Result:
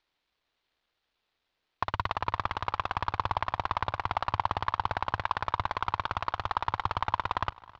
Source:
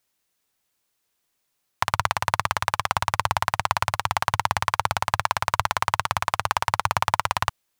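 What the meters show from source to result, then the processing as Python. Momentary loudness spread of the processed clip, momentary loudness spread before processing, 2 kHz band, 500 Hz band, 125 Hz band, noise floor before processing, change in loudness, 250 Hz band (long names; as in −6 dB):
2 LU, 1 LU, −9.5 dB, −6.5 dB, −6.0 dB, −75 dBFS, −7.0 dB, −3.5 dB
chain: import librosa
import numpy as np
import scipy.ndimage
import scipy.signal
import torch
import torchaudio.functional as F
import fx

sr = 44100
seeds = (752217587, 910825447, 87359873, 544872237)

y = fx.cvsd(x, sr, bps=64000)
y = scipy.signal.sosfilt(scipy.signal.cheby1(3, 1.0, 4000.0, 'lowpass', fs=sr, output='sos'), y)
y = fx.peak_eq(y, sr, hz=160.0, db=-8.0, octaves=1.5)
y = fx.echo_feedback(y, sr, ms=269, feedback_pct=50, wet_db=-21.5)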